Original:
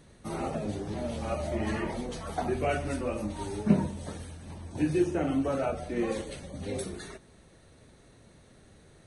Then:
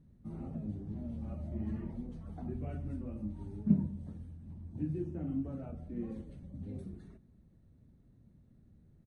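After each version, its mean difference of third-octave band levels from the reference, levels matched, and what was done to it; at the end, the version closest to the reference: 11.5 dB: EQ curve 230 Hz 0 dB, 430 Hz -15 dB, 6100 Hz -28 dB; outdoor echo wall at 37 m, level -28 dB; gain -3.5 dB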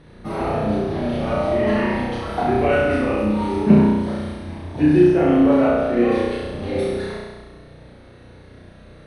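5.0 dB: running mean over 6 samples; flutter echo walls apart 5.7 m, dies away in 1.3 s; gain +7.5 dB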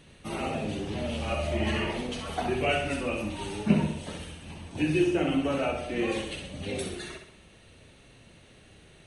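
2.5 dB: bell 2800 Hz +13 dB 0.64 oct; on a send: flutter echo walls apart 11.1 m, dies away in 0.6 s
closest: third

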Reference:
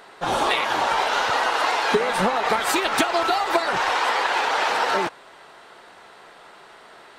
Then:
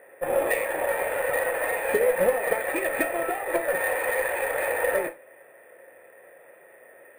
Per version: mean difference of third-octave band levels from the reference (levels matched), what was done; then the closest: 8.0 dB: vocal tract filter e; added harmonics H 4 -23 dB, 6 -23 dB, 7 -34 dB, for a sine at -18.5 dBFS; non-linear reverb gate 0.11 s falling, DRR 7 dB; careless resampling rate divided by 4×, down filtered, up hold; gain +9 dB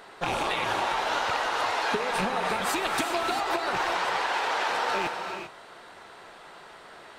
3.5 dB: rattling part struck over -34 dBFS, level -15 dBFS; low shelf 140 Hz +5 dB; compressor, threshold -23 dBFS, peak gain reduction 9.5 dB; non-linear reverb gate 0.42 s rising, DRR 5.5 dB; gain -2 dB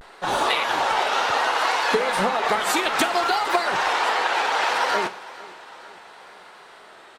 2.0 dB: low shelf 270 Hz -4.5 dB; vibrato 0.66 Hz 75 cents; feedback echo 0.457 s, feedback 57%, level -19.5 dB; Schroeder reverb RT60 0.43 s, combs from 30 ms, DRR 13.5 dB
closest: third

